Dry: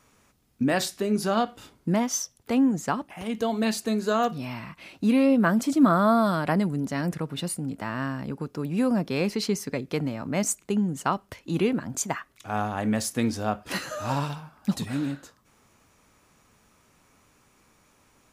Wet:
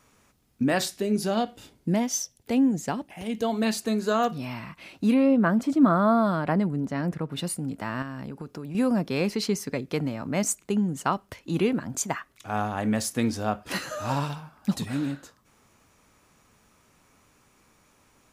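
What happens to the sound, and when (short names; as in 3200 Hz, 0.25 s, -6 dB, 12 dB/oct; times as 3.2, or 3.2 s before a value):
0.96–3.44 bell 1200 Hz -9 dB 0.73 oct
5.14–7.32 high shelf 3400 Hz -12 dB
8.02–8.75 compressor, threshold -32 dBFS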